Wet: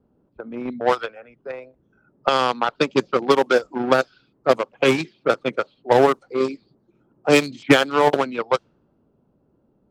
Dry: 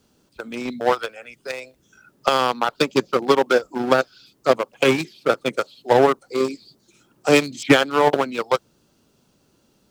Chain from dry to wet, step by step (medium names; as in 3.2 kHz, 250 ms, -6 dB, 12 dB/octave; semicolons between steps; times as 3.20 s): level-controlled noise filter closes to 770 Hz, open at -11.5 dBFS